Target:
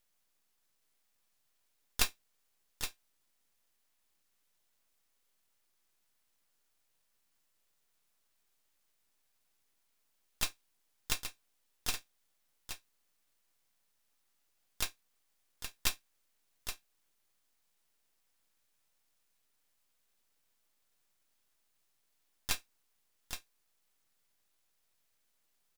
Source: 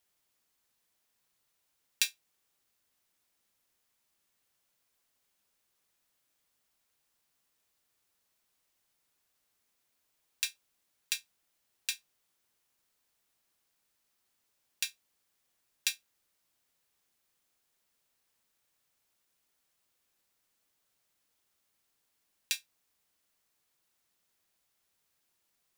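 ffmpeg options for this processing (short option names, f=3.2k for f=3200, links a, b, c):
-filter_complex "[0:a]aecho=1:1:820:0.376,aeval=exprs='max(val(0),0)':c=same,asplit=3[a][b][c];[b]asetrate=29433,aresample=44100,atempo=1.49831,volume=-8dB[d];[c]asetrate=58866,aresample=44100,atempo=0.749154,volume=-5dB[e];[a][d][e]amix=inputs=3:normalize=0,volume=1dB"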